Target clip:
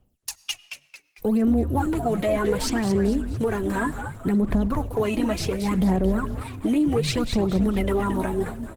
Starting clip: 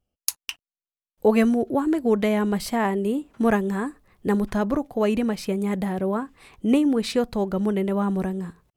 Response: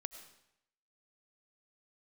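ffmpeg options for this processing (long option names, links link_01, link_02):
-filter_complex "[0:a]equalizer=frequency=5300:width_type=o:width=0.54:gain=-3.5,acrossover=split=250|7800[link_01][link_02][link_03];[link_01]acompressor=threshold=-26dB:ratio=4[link_04];[link_02]acompressor=threshold=-23dB:ratio=4[link_05];[link_03]acompressor=threshold=-59dB:ratio=4[link_06];[link_04][link_05][link_06]amix=inputs=3:normalize=0,aphaser=in_gain=1:out_gain=1:delay=3.2:decay=0.78:speed=0.67:type=sinusoidal,acompressor=threshold=-20dB:ratio=3,alimiter=limit=-17.5dB:level=0:latency=1:release=27,highshelf=frequency=7200:gain=10.5,asplit=6[link_07][link_08][link_09][link_10][link_11][link_12];[link_08]adelay=224,afreqshift=-150,volume=-7.5dB[link_13];[link_09]adelay=448,afreqshift=-300,volume=-15.2dB[link_14];[link_10]adelay=672,afreqshift=-450,volume=-23dB[link_15];[link_11]adelay=896,afreqshift=-600,volume=-30.7dB[link_16];[link_12]adelay=1120,afreqshift=-750,volume=-38.5dB[link_17];[link_07][link_13][link_14][link_15][link_16][link_17]amix=inputs=6:normalize=0,asplit=2[link_18][link_19];[1:a]atrim=start_sample=2205,highshelf=frequency=3000:gain=-6.5[link_20];[link_19][link_20]afir=irnorm=-1:irlink=0,volume=-5.5dB[link_21];[link_18][link_21]amix=inputs=2:normalize=0" -ar 48000 -c:a libopus -b:a 16k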